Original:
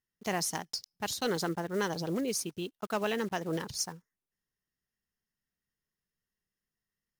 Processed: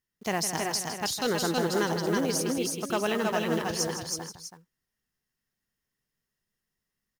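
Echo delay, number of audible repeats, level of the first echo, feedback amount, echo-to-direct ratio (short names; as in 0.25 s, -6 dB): 0.159 s, 4, -10.0 dB, no steady repeat, -1.0 dB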